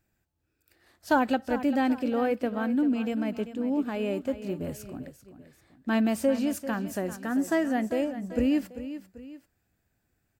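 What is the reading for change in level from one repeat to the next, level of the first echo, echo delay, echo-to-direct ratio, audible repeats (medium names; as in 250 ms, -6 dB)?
-7.0 dB, -12.5 dB, 392 ms, -11.5 dB, 2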